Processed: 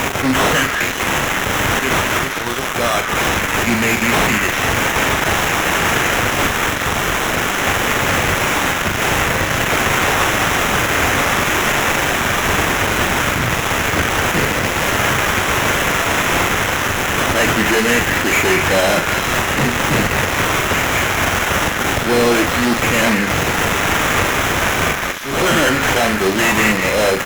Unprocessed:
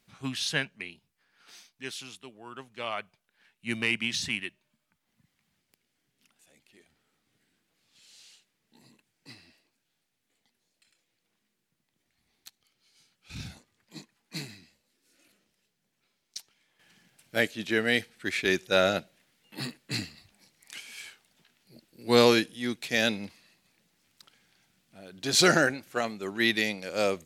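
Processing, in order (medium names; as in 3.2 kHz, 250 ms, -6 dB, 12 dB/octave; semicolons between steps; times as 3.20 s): zero-crossing glitches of -13 dBFS; sample-rate reducer 4.6 kHz, jitter 0%; peaking EQ 92 Hz -7.5 dB 0.37 oct; fuzz box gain 38 dB, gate -45 dBFS; slow attack 273 ms; doubling 42 ms -8 dB; repeats whose band climbs or falls 198 ms, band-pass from 1.7 kHz, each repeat 1.4 oct, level -2 dB; loudspeaker Doppler distortion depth 0.11 ms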